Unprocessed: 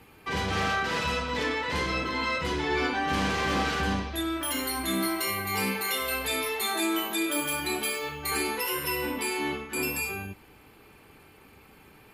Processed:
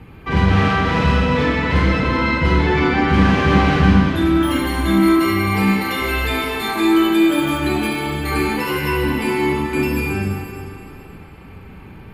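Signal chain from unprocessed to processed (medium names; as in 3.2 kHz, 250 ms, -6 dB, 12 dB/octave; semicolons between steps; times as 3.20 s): tone controls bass +12 dB, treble -13 dB; Schroeder reverb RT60 2.7 s, combs from 33 ms, DRR 0 dB; trim +7 dB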